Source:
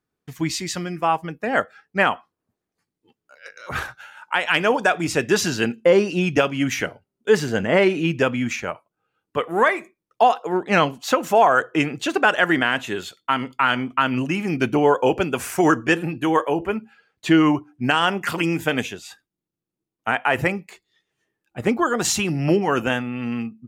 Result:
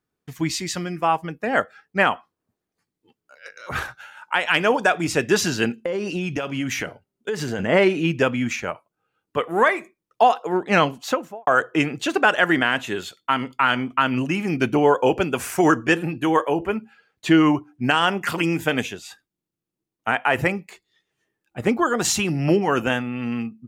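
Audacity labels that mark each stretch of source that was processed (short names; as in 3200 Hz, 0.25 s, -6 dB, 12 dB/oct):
5.690000	7.590000	compressor 12:1, threshold -21 dBFS
10.970000	11.470000	studio fade out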